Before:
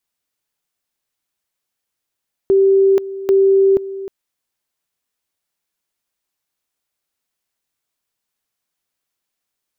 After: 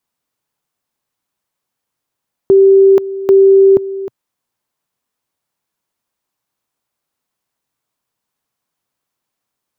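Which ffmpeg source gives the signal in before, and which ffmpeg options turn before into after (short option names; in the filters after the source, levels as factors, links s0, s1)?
-f lavfi -i "aevalsrc='pow(10,(-8.5-15.5*gte(mod(t,0.79),0.48))/20)*sin(2*PI*389*t)':d=1.58:s=44100"
-af "equalizer=f=125:t=o:w=1:g=8,equalizer=f=250:t=o:w=1:g=5,equalizer=f=500:t=o:w=1:g=3,equalizer=f=1000:t=o:w=1:g=7"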